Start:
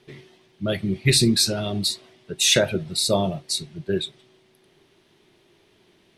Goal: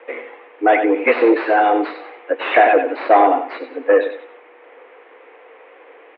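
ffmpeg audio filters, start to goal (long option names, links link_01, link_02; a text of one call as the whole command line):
ffmpeg -i in.wav -filter_complex "[0:a]aecho=1:1:94|188|282:0.282|0.0733|0.0191,asplit=2[link_01][link_02];[link_02]highpass=frequency=720:poles=1,volume=25dB,asoftclip=type=tanh:threshold=-3.5dB[link_03];[link_01][link_03]amix=inputs=2:normalize=0,lowpass=frequency=1800:poles=1,volume=-6dB,highpass=frequency=200:width_type=q:width=0.5412,highpass=frequency=200:width_type=q:width=1.307,lowpass=frequency=2300:width_type=q:width=0.5176,lowpass=frequency=2300:width_type=q:width=0.7071,lowpass=frequency=2300:width_type=q:width=1.932,afreqshift=110,volume=3dB" out.wav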